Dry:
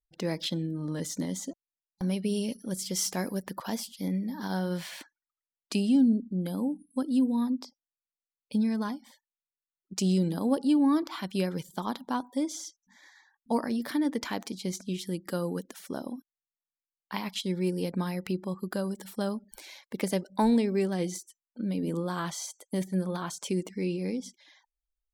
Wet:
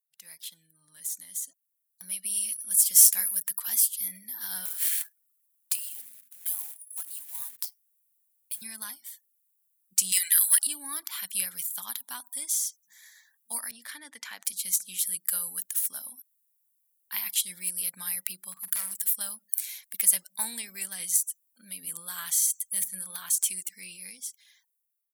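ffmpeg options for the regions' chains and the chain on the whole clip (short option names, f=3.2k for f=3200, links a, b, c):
-filter_complex "[0:a]asettb=1/sr,asplit=3[a][b][c];[a]atrim=end=4.654[d];[b]atrim=start=4.65:end=8.62,asetpts=PTS-STARTPTS,afade=t=in:d=0.004:c=qsin,afade=t=out:st=3.966:d=0.004:c=qsin,acompressor=threshold=-33dB:ratio=8:attack=3.2:release=140:knee=1:detection=peak,highpass=f=710:t=q:w=1.9,acrusher=bits=2:mode=log:mix=0:aa=0.000001[e];[c]atrim=start=8.616[f];[d][e]acrossfade=d=0.004:c1=hsin:c2=qsin[g];[g][f]acrossfade=d=0.004:c1=qsin:c2=hsin,asettb=1/sr,asplit=3[h][i][j];[h]atrim=end=10.124[k];[i]atrim=start=10.12:end=10.67,asetpts=PTS-STARTPTS,afade=t=in:d=0.004:c=qsin,afade=t=out:st=0.546:d=0.004:c=qsin,highpass=f=1.9k:t=q:w=7.5,highshelf=f=6.8k:g=4.5,aeval=exprs='0.0841*sin(PI/2*1.58*val(0)/0.0841)':c=same[l];[j]atrim=start=10.666[m];[k][l]acrossfade=d=0.004:c1=hsin:c2=qsin[n];[n][m]acrossfade=d=0.004:c1=qsin:c2=hsin,asettb=1/sr,asplit=3[o][p][q];[o]atrim=end=13.714[r];[p]atrim=start=13.71:end=14.45,asetpts=PTS-STARTPTS,afade=t=in:d=0.004:c=qsin,afade=t=out:st=0.736:d=0.004:c=qsin,highpass=220,lowpass=6.2k,adynamicequalizer=threshold=0.00282:dfrequency=2300:dqfactor=0.7:tfrequency=2300:tqfactor=0.7:attack=5:release=100:ratio=0.375:range=3.5:mode=cutabove:tftype=highshelf[s];[q]atrim=start=14.446[t];[r][s]acrossfade=d=0.004:c1=hsin:c2=qsin[u];[u][t]acrossfade=d=0.004:c1=qsin:c2=hsin,asettb=1/sr,asplit=3[v][w][x];[v]atrim=end=18.524[y];[w]atrim=start=18.52:end=18.95,asetpts=PTS-STARTPTS,afade=t=in:d=0.004:c=qsin,afade=t=out:st=0.426:d=0.004:c=qsin,highpass=f=51:w=0.5412,highpass=f=51:w=1.3066,aeval=exprs='0.0376*(abs(mod(val(0)/0.0376+3,4)-2)-1)':c=same,asplit=2[z][aa];[aa]adelay=46,volume=-13dB[ab];[z][ab]amix=inputs=2:normalize=0,atrim=end_sample=18963[ac];[x]atrim=start=18.946[ad];[y][ac]acrossfade=d=0.004:c1=hsin:c2=qsin[ae];[ae][ad]acrossfade=d=0.004:c1=qsin:c2=hsin,aderivative,dynaudnorm=f=830:g=5:m=13.5dB,firequalizer=gain_entry='entry(130,0);entry(370,-19);entry(620,-10);entry(1700,0);entry(5000,-6);entry(10000,9)':delay=0.05:min_phase=1,volume=-1.5dB"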